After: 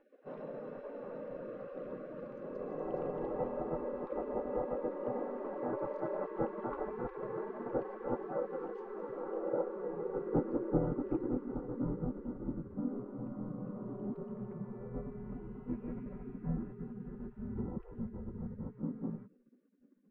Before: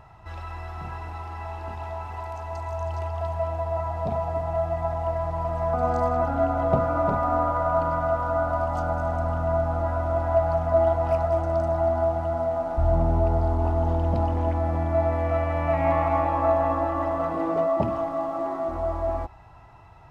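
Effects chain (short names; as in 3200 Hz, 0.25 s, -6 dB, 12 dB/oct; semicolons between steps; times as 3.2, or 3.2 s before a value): spectral gate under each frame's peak -25 dB weak; low-pass sweep 580 Hz -> 250 Hz, 8.82–12.63; gain +9.5 dB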